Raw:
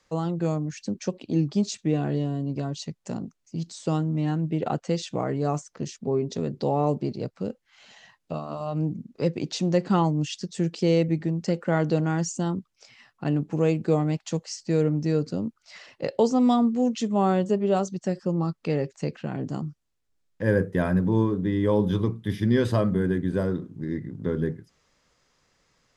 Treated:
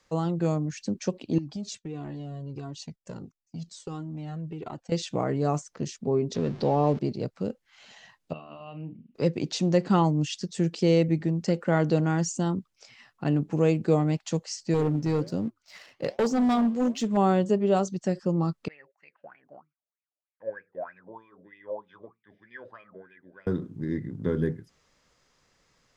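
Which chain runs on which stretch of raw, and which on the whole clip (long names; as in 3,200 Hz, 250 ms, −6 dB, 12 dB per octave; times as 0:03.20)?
0:01.38–0:04.92: noise gate −46 dBFS, range −14 dB + downward compressor 4 to 1, threshold −27 dBFS + flanger whose copies keep moving one way falling 1.5 Hz
0:06.34–0:06.99: converter with a step at zero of −39.5 dBFS + low-pass filter 5,800 Hz 24 dB per octave
0:08.33–0:09.15: transistor ladder low-pass 3,000 Hz, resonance 75% + double-tracking delay 37 ms −10.5 dB
0:14.74–0:17.17: flanger 1.3 Hz, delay 3.9 ms, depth 9.1 ms, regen −84% + leveller curve on the samples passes 1 + gain into a clipping stage and back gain 19.5 dB
0:18.68–0:23.47: high-shelf EQ 6,500 Hz −10.5 dB + LFO wah 3.2 Hz 560–2,500 Hz, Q 11
whole clip: no processing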